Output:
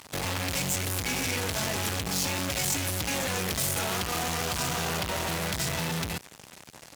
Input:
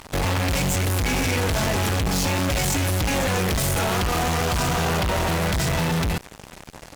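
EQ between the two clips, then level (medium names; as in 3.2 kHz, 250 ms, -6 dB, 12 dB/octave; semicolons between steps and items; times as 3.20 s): high-pass 82 Hz; pre-emphasis filter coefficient 0.8; treble shelf 6.6 kHz -11 dB; +5.0 dB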